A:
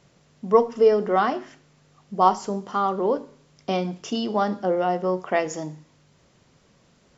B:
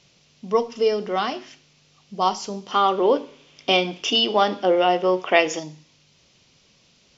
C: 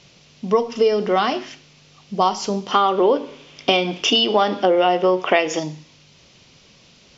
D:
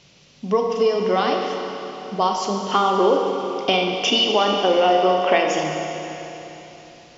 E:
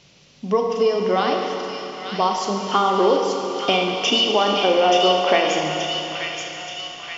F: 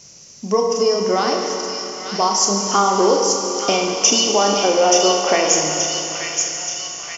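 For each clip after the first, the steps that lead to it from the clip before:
high-order bell 3.8 kHz +12 dB; time-frequency box 2.71–5.59 s, 250–3700 Hz +8 dB; trim -3.5 dB
compression 4:1, threshold -22 dBFS, peak gain reduction 10 dB; treble shelf 6.7 kHz -6.5 dB; trim +8.5 dB
Schroeder reverb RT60 3.6 s, combs from 32 ms, DRR 2 dB; trim -2.5 dB
feedback echo behind a high-pass 878 ms, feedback 54%, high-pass 1.9 kHz, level -3 dB
resonant high shelf 4.6 kHz +10 dB, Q 3; doubling 30 ms -8.5 dB; trim +1.5 dB

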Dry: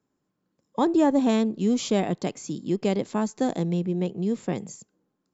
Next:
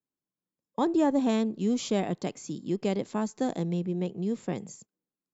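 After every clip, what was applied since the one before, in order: gate -48 dBFS, range -15 dB; trim -4 dB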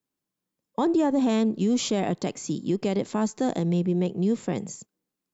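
peak limiter -23 dBFS, peak gain reduction 7.5 dB; trim +7 dB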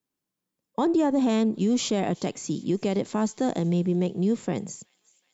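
feedback echo behind a high-pass 372 ms, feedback 69%, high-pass 2.5 kHz, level -22.5 dB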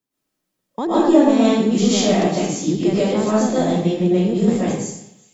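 reverberation RT60 0.75 s, pre-delay 85 ms, DRR -9 dB

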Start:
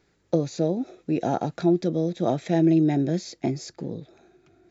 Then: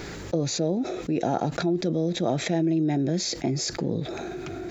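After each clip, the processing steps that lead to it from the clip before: level flattener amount 70%; trim -5.5 dB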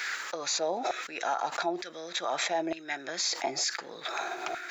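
LFO high-pass saw down 1.1 Hz 750–1700 Hz; peak limiter -24 dBFS, peak gain reduction 11 dB; trim +4 dB

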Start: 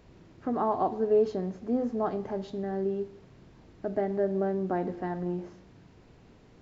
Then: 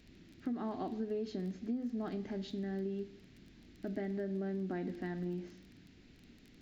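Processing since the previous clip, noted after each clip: crackle 16 per s -45 dBFS; graphic EQ 125/250/500/1000/2000/4000 Hz -6/+7/-8/-12/+5/+6 dB; compression 12:1, threshold -30 dBFS, peak gain reduction 10.5 dB; trim -3.5 dB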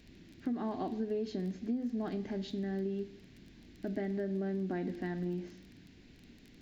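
band-stop 1.3 kHz, Q 12; trim +2.5 dB

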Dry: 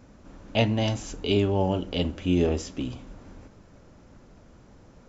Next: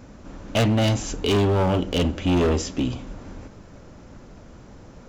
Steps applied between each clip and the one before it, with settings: hard clipper -24 dBFS, distortion -8 dB; trim +7.5 dB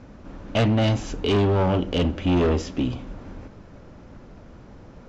distance through air 120 m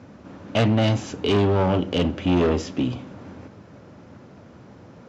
high-pass 89 Hz 24 dB/octave; trim +1 dB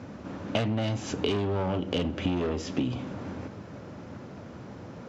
compression 16:1, threshold -27 dBFS, peak gain reduction 13 dB; trim +3 dB

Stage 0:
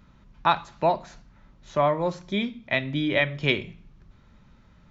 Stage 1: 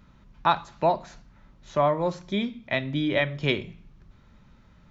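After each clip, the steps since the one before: dynamic bell 2.4 kHz, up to -4 dB, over -37 dBFS, Q 1.4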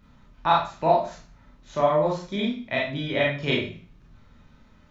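Schroeder reverb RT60 0.36 s, combs from 25 ms, DRR -4 dB; trim -3.5 dB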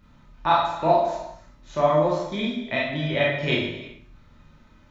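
gated-style reverb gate 400 ms falling, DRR 4.5 dB

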